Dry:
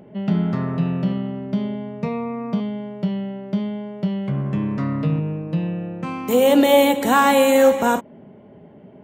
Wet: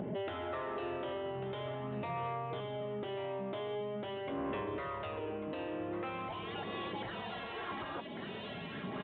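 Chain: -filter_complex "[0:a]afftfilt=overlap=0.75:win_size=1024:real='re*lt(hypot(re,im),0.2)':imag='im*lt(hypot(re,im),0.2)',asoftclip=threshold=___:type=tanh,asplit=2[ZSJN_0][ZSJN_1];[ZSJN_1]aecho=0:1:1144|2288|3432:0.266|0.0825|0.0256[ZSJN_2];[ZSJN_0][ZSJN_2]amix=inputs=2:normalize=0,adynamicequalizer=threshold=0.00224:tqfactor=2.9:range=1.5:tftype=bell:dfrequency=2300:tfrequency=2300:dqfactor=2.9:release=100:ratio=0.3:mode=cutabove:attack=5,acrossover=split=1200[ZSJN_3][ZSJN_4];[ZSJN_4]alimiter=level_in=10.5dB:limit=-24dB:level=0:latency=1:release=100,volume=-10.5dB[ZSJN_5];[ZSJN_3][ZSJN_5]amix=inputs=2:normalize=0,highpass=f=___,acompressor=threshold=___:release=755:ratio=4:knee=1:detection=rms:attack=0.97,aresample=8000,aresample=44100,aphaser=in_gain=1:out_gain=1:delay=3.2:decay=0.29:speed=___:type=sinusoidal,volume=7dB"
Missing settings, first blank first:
-30dB, 62, -43dB, 0.44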